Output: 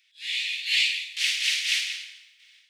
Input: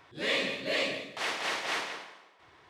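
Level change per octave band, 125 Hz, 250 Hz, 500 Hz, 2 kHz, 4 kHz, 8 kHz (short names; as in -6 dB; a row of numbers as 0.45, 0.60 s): under -40 dB, under -40 dB, under -40 dB, +5.5 dB, +10.0 dB, +11.5 dB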